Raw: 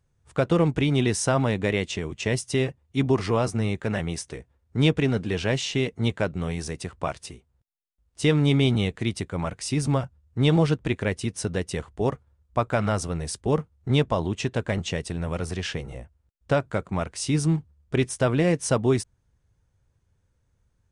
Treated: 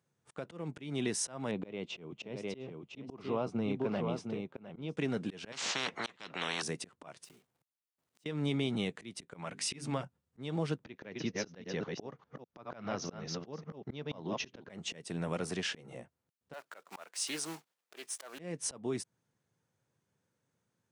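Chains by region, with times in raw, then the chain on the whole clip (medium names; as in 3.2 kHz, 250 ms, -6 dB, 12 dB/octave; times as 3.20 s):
1.51–4.97 s: low-pass 2.9 kHz + peaking EQ 1.8 kHz -12.5 dB 0.46 oct + delay 707 ms -8 dB
5.52–6.62 s: low-pass 2.9 kHz + spectrum-flattening compressor 10:1
7.24–8.26 s: block-companded coder 3-bit + compression 10:1, threshold -49 dBFS
9.27–10.02 s: hum notches 50/100/150/200/250/300/350/400 Hz + dynamic bell 2.4 kHz, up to +6 dB, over -47 dBFS, Q 0.85
10.84–14.70 s: chunks repeated in reverse 200 ms, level -6 dB + steep low-pass 6.4 kHz 96 dB/octave
16.53–18.39 s: block-companded coder 5-bit + high-pass 660 Hz + loudspeaker Doppler distortion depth 0.14 ms
whole clip: high-pass 150 Hz 24 dB/octave; compression 4:1, threshold -26 dBFS; slow attack 256 ms; trim -3.5 dB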